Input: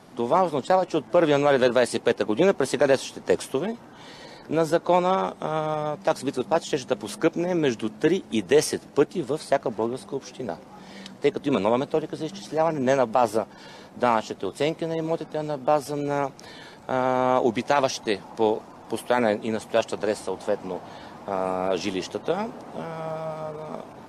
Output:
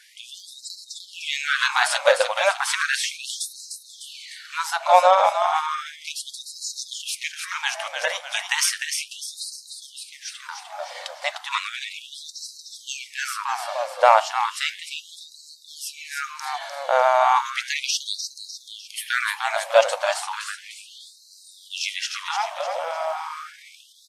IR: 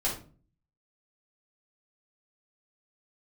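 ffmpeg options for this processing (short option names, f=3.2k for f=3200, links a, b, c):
-filter_complex "[0:a]asplit=7[a][b][c][d][e][f][g];[b]adelay=301,afreqshift=-75,volume=-6dB[h];[c]adelay=602,afreqshift=-150,volume=-12.7dB[i];[d]adelay=903,afreqshift=-225,volume=-19.5dB[j];[e]adelay=1204,afreqshift=-300,volume=-26.2dB[k];[f]adelay=1505,afreqshift=-375,volume=-33dB[l];[g]adelay=1806,afreqshift=-450,volume=-39.7dB[m];[a][h][i][j][k][l][m]amix=inputs=7:normalize=0,asplit=2[n][o];[1:a]atrim=start_sample=2205[p];[o][p]afir=irnorm=-1:irlink=0,volume=-20.5dB[q];[n][q]amix=inputs=2:normalize=0,afftfilt=real='re*gte(b*sr/1024,500*pow(3900/500,0.5+0.5*sin(2*PI*0.34*pts/sr)))':imag='im*gte(b*sr/1024,500*pow(3900/500,0.5+0.5*sin(2*PI*0.34*pts/sr)))':win_size=1024:overlap=0.75,volume=7dB"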